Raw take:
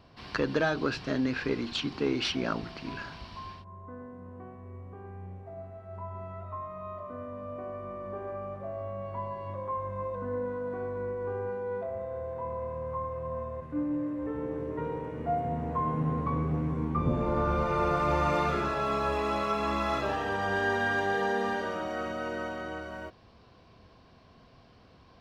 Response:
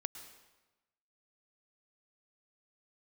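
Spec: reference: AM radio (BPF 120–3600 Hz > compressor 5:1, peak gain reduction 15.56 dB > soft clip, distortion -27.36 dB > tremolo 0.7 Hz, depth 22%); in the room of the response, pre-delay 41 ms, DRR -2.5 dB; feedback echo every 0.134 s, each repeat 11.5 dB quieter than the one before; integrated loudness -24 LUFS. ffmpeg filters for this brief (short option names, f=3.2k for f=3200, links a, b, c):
-filter_complex "[0:a]aecho=1:1:134|268|402:0.266|0.0718|0.0194,asplit=2[a][b];[1:a]atrim=start_sample=2205,adelay=41[c];[b][c]afir=irnorm=-1:irlink=0,volume=4dB[d];[a][d]amix=inputs=2:normalize=0,highpass=120,lowpass=3.6k,acompressor=threshold=-35dB:ratio=5,asoftclip=threshold=-25.5dB,tremolo=f=0.7:d=0.22,volume=15.5dB"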